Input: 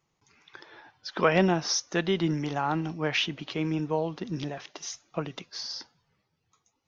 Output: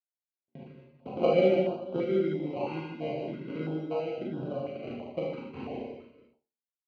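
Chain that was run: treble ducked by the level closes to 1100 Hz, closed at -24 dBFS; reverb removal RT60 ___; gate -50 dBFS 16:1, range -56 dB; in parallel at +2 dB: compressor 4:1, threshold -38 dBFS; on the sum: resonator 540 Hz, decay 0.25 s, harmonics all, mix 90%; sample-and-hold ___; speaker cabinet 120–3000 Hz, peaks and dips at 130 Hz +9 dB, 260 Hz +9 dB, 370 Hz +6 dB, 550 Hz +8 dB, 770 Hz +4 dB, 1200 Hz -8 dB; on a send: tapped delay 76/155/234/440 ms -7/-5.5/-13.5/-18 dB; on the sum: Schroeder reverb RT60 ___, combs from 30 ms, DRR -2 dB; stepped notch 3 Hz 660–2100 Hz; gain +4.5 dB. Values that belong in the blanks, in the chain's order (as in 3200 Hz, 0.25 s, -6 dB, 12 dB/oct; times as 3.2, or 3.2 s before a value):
0.89 s, 25×, 0.33 s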